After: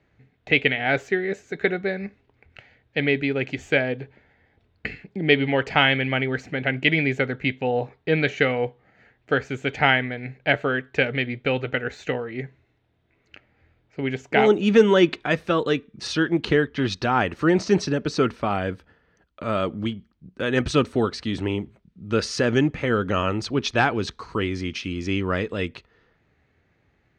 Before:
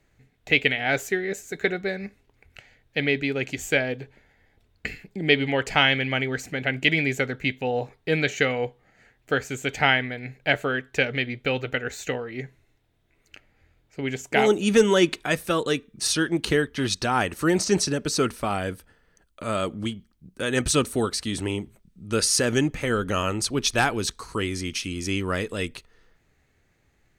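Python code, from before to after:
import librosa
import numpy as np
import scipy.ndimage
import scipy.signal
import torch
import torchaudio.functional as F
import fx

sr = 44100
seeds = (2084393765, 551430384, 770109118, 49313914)

y = scipy.signal.sosfilt(scipy.signal.butter(2, 63.0, 'highpass', fs=sr, output='sos'), x)
y = fx.air_absorb(y, sr, metres=200.0)
y = y * librosa.db_to_amplitude(3.0)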